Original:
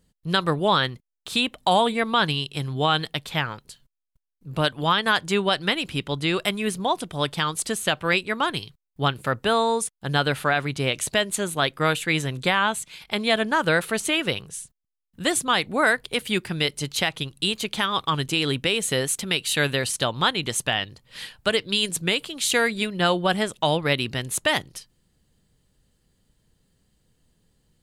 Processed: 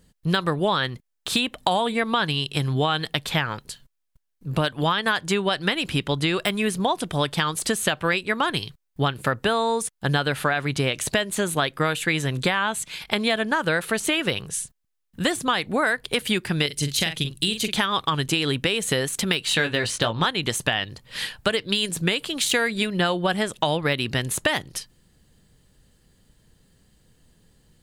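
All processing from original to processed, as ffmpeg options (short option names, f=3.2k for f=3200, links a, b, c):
-filter_complex "[0:a]asettb=1/sr,asplit=3[a][b][c];[a]atrim=end=16.664[d];[b]atrim=start=16.66:end=17.76,asetpts=PTS-STARTPTS,afade=t=in:d=0.004:c=qsin,afade=t=out:st=1.096:d=0.004:c=qsin,equalizer=f=940:w=0.68:g=-11.5,asoftclip=type=hard:threshold=-11.5dB,asplit=2[e][f];[f]adelay=42,volume=-9dB[g];[e][g]amix=inputs=2:normalize=0,atrim=end_sample=48510[h];[c]atrim=start=17.756[i];[d][h]acrossfade=d=0.004:c1=hsin:c2=qsin[j];[j][i]acrossfade=d=0.004:c1=qsin:c2=hsin,asettb=1/sr,asplit=3[k][l][m];[k]atrim=end=19.454[n];[l]atrim=start=19.45:end=20.26,asetpts=PTS-STARTPTS,afade=t=in:d=0.004:c=qsin,afade=t=out:st=0.806:d=0.004:c=qsin,adynamicsmooth=sensitivity=1:basefreq=5.8k,asplit=2[o][p];[p]adelay=18,volume=-6dB[q];[o][q]amix=inputs=2:normalize=0,atrim=end_sample=35721[r];[m]atrim=start=20.256[s];[n][r]acrossfade=d=0.004:c1=hsin:c2=qsin[t];[t][s]acrossfade=d=0.004:c1=qsin:c2=hsin,deesser=0.45,equalizer=f=1.7k:t=o:w=0.23:g=3,acompressor=threshold=-26dB:ratio=6,volume=7dB"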